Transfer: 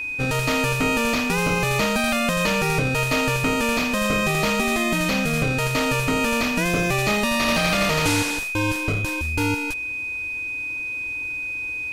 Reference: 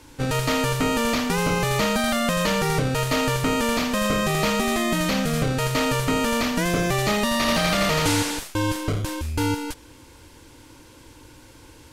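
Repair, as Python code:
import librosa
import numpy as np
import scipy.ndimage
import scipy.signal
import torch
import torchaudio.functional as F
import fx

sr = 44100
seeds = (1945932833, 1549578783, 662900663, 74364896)

y = fx.notch(x, sr, hz=2500.0, q=30.0)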